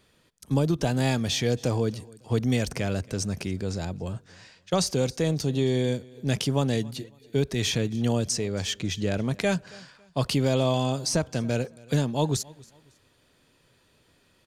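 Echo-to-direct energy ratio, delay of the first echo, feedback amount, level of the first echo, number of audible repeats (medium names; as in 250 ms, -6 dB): -23.0 dB, 276 ms, 32%, -23.5 dB, 2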